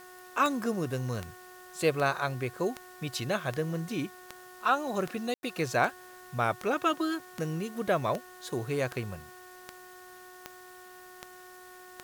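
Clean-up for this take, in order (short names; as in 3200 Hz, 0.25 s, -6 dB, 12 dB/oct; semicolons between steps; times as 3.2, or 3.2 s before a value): de-click; de-hum 365.4 Hz, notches 5; room tone fill 5.34–5.43; noise print and reduce 26 dB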